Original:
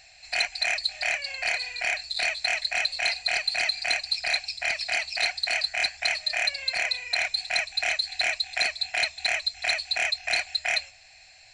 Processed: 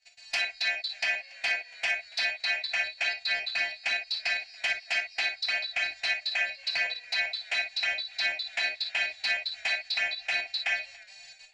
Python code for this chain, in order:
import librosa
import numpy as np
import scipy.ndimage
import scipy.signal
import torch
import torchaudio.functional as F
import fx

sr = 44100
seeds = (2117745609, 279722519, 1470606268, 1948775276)

y = fx.freq_snap(x, sr, grid_st=2)
y = scipy.signal.sosfilt(scipy.signal.butter(2, 6400.0, 'lowpass', fs=sr, output='sos'), y)
y = fx.peak_eq(y, sr, hz=69.0, db=-8.5, octaves=0.41)
y = fx.level_steps(y, sr, step_db=24)
y = fx.env_flanger(y, sr, rest_ms=9.6, full_db=-20.0)
y = fx.env_lowpass_down(y, sr, base_hz=1700.0, full_db=-21.5)
y = fx.rev_gated(y, sr, seeds[0], gate_ms=80, shape='flat', drr_db=3.5)
y = fx.echo_warbled(y, sr, ms=285, feedback_pct=39, rate_hz=2.8, cents=90, wet_db=-23.5)